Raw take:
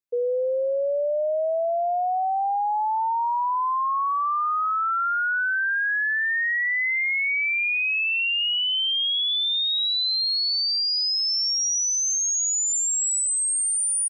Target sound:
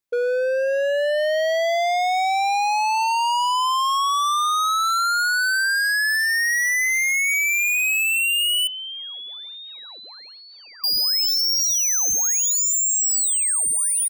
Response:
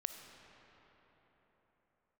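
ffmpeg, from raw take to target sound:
-filter_complex "[0:a]dynaudnorm=f=130:g=17:m=2.51,asoftclip=type=hard:threshold=0.0473,asettb=1/sr,asplit=3[s0][s1][s2];[s0]atrim=end=8.674[s3];[s1]atrim=start=8.67:end=10.84,asetpts=PTS-STARTPTS,afade=t=in:d=0.004:c=qsin,afade=t=out:st=2.166:d=0.004:c=qsin,highpass=370,equalizer=f=500:t=q:w=4:g=3,equalizer=f=1000:t=q:w=4:g=3,equalizer=f=1900:t=q:w=4:g=-3,lowpass=f=2300:w=0.5412,lowpass=f=2300:w=1.3066[s4];[s2]atrim=start=10.836[s5];[s3][s4]acrossfade=d=0.004:c1=hsin:c2=qsin[s6];[s6][s5]acrossfade=d=0.004:c1=qsin:c2=hsin,volume=2.11"

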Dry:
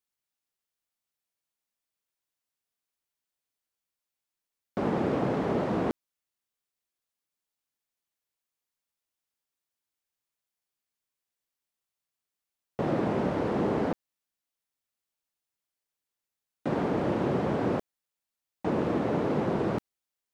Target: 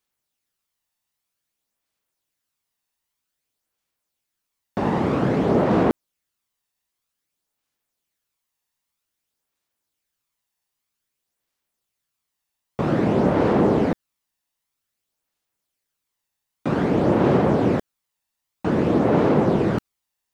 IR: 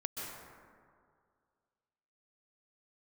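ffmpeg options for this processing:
-af "aphaser=in_gain=1:out_gain=1:delay=1.1:decay=0.34:speed=0.52:type=sinusoidal,volume=2.11"

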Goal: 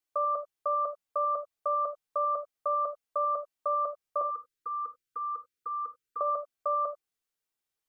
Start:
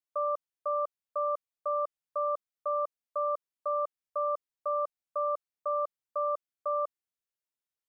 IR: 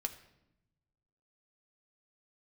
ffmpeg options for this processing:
-filter_complex "[0:a]asettb=1/sr,asplit=3[s0][s1][s2];[s0]atrim=end=4.214[s3];[s1]atrim=start=4.21:end=6.21,asetpts=PTS-STARTPTS,afade=t=in:d=0.004:c=qsin,afade=t=out:st=1.996:d=0.004:c=qsin,asuperstop=centerf=770:order=20:qfactor=1.1[s4];[s2]atrim=start=6.206[s5];[s3][s4]acrossfade=d=0.004:c1=hsin:c2=qsin[s6];[s6][s5]acrossfade=d=0.004:c1=qsin:c2=hsin[s7];[1:a]atrim=start_sample=2205,atrim=end_sample=4410[s8];[s7][s8]afir=irnorm=-1:irlink=0,volume=1.78"

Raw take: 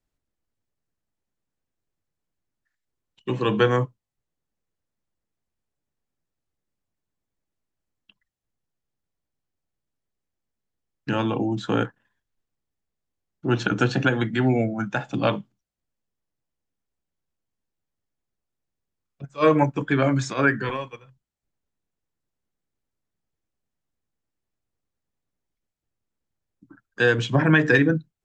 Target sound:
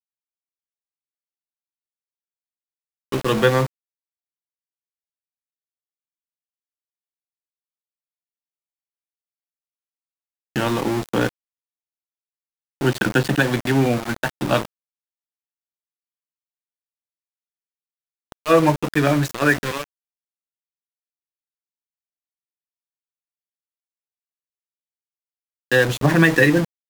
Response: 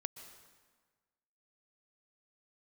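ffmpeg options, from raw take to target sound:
-af "aeval=exprs='val(0)*gte(abs(val(0)),0.0501)':c=same,asetrate=46305,aresample=44100,volume=1.41"

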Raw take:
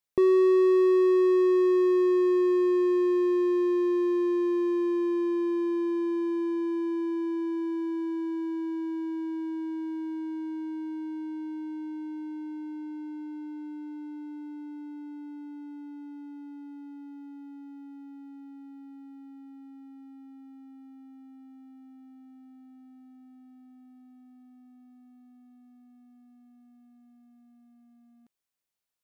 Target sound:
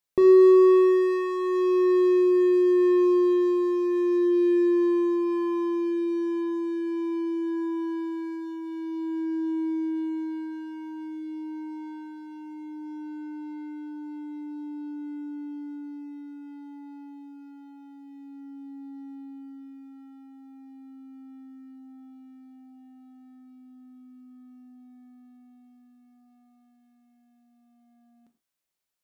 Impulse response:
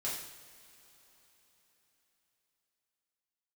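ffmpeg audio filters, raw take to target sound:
-filter_complex "[0:a]asplit=2[s0][s1];[1:a]atrim=start_sample=2205,atrim=end_sample=6174[s2];[s1][s2]afir=irnorm=-1:irlink=0,volume=0.562[s3];[s0][s3]amix=inputs=2:normalize=0,volume=0.891"

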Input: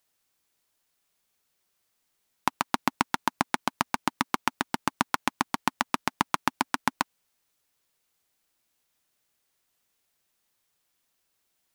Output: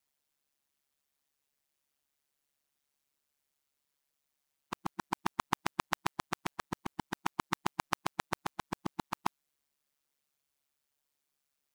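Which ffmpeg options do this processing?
-af "areverse,aeval=exprs='val(0)*sin(2*PI*71*n/s)':c=same,volume=0.562"

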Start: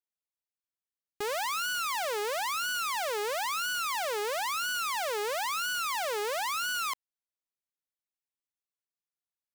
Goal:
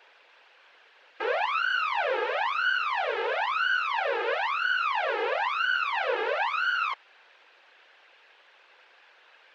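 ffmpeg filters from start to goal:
-af "aeval=exprs='val(0)+0.5*0.00708*sgn(val(0))':c=same,afftfilt=real='hypot(re,im)*cos(2*PI*random(0))':imag='hypot(re,im)*sin(2*PI*random(1))':win_size=512:overlap=0.75,highpass=f=410:w=0.5412,highpass=f=410:w=1.3066,equalizer=f=510:t=q:w=4:g=5,equalizer=f=880:t=q:w=4:g=4,equalizer=f=1600:t=q:w=4:g=8,equalizer=f=2600:t=q:w=4:g=5,lowpass=f=3500:w=0.5412,lowpass=f=3500:w=1.3066,volume=2.11"

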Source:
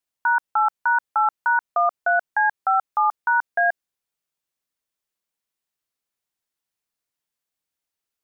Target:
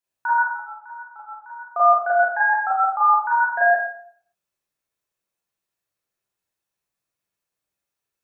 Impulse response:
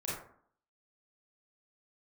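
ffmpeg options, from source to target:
-filter_complex "[0:a]asettb=1/sr,asplit=3[s0][s1][s2];[s0]atrim=end=0.474[s3];[s1]atrim=start=0.47:end=1.7,asetpts=PTS-STARTPTS,afade=t=in:d=0.004:c=qsin,afade=t=out:st=1.226:d=0.004:c=qsin,agate=range=0.126:threshold=0.447:ratio=16:detection=peak[s4];[s2]atrim=start=1.696[s5];[s3][s4]acrossfade=d=0.004:c1=hsin:c2=qsin[s6];[s6][s5]acrossfade=d=0.004:c1=qsin:c2=hsin[s7];[1:a]atrim=start_sample=2205[s8];[s7][s8]afir=irnorm=-1:irlink=0"

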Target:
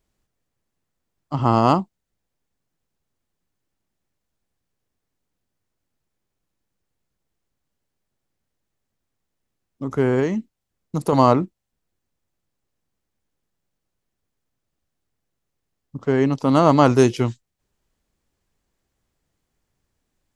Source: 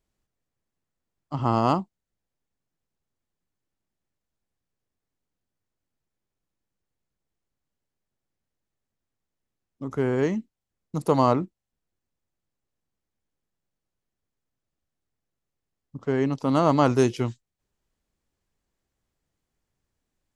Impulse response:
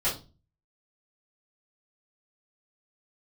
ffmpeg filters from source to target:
-filter_complex "[0:a]asettb=1/sr,asplit=3[s0][s1][s2];[s0]atrim=end=10.194[s3];[s1]atrim=start=10.19:end=11.13,asetpts=PTS-STARTPTS,afade=t=in:d=0.004:c=qsin,afade=t=out:st=0.936:d=0.004:c=qsin,acompressor=threshold=0.0631:ratio=2.5[s4];[s2]atrim=start=11.126[s5];[s3][s4]acrossfade=d=0.004:c1=hsin:c2=qsin[s6];[s6][s5]acrossfade=d=0.004:c1=qsin:c2=hsin,volume=1.88"

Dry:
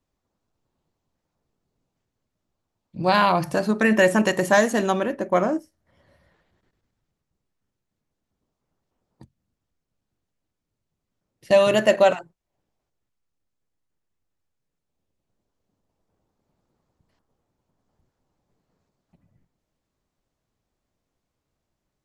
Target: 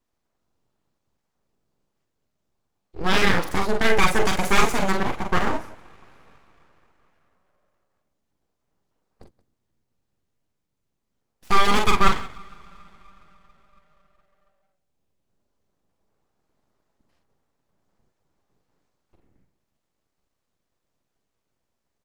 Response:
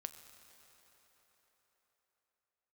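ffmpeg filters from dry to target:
-filter_complex "[0:a]aecho=1:1:41|46|177:0.355|0.422|0.126,asplit=2[s0][s1];[1:a]atrim=start_sample=2205[s2];[s1][s2]afir=irnorm=-1:irlink=0,volume=0.398[s3];[s0][s3]amix=inputs=2:normalize=0,aeval=exprs='abs(val(0))':c=same,volume=0.891"

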